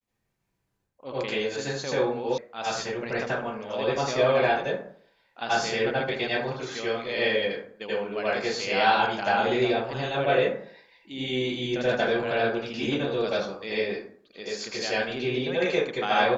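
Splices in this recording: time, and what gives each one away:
2.38 s: sound stops dead

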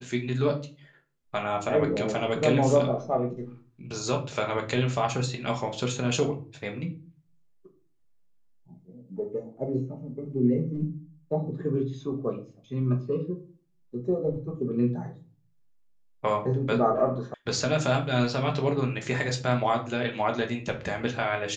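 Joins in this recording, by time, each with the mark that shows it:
17.34 s: sound stops dead

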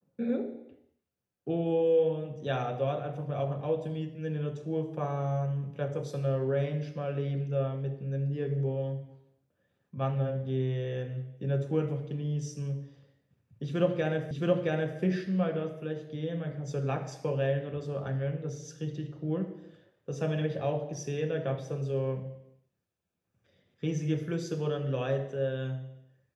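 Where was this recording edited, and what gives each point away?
14.31 s: repeat of the last 0.67 s

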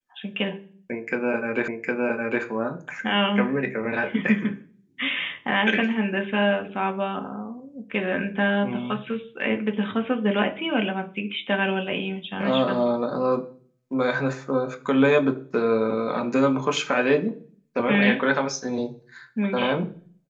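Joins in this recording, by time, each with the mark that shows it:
1.68 s: repeat of the last 0.76 s

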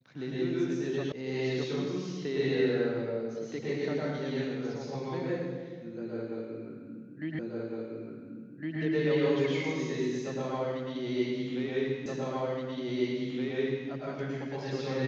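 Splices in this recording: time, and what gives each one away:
1.12 s: sound stops dead
7.39 s: repeat of the last 1.41 s
12.06 s: repeat of the last 1.82 s

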